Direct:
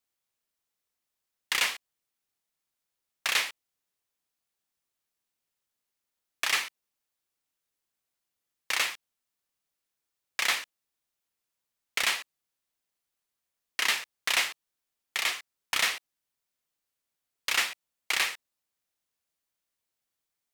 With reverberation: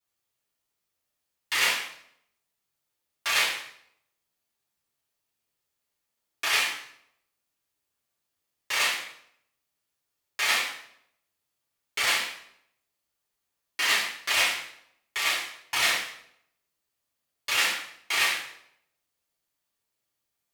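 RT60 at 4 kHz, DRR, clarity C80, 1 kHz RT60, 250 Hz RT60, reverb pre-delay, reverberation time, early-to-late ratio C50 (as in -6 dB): 0.60 s, -10.5 dB, 7.0 dB, 0.65 s, 0.80 s, 3 ms, 0.70 s, 3.5 dB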